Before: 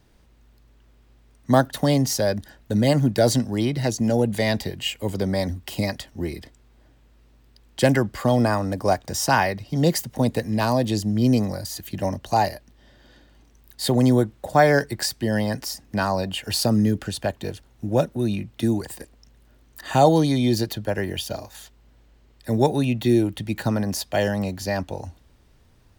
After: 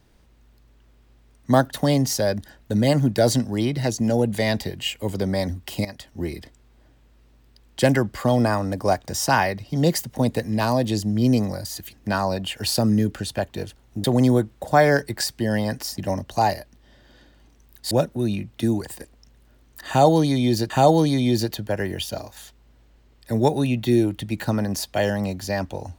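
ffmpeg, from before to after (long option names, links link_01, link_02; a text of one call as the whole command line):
ffmpeg -i in.wav -filter_complex "[0:a]asplit=7[link_01][link_02][link_03][link_04][link_05][link_06][link_07];[link_01]atrim=end=5.85,asetpts=PTS-STARTPTS,afade=type=out:start_time=5.846:duration=0.004:curve=hsin:silence=0.211349[link_08];[link_02]atrim=start=5.85:end=11.932,asetpts=PTS-STARTPTS,afade=type=in:duration=0.35:silence=0.211349[link_09];[link_03]atrim=start=15.798:end=17.912[link_10];[link_04]atrim=start=13.858:end=15.802[link_11];[link_05]atrim=start=11.928:end=13.862[link_12];[link_06]atrim=start=17.908:end=20.702[link_13];[link_07]atrim=start=19.878[link_14];[link_08][link_09]concat=n=2:v=0:a=1[link_15];[link_15][link_10]acrossfade=duration=0.004:curve1=hsin:curve2=hsin[link_16];[link_16][link_11]acrossfade=duration=0.004:curve1=hsin:curve2=hsin[link_17];[link_17][link_12]acrossfade=duration=0.004:curve1=hsin:curve2=hsin[link_18];[link_18][link_13]acrossfade=duration=0.004:curve1=hsin:curve2=hsin[link_19];[link_19][link_14]acrossfade=duration=0.004:curve1=hsin:curve2=hsin" out.wav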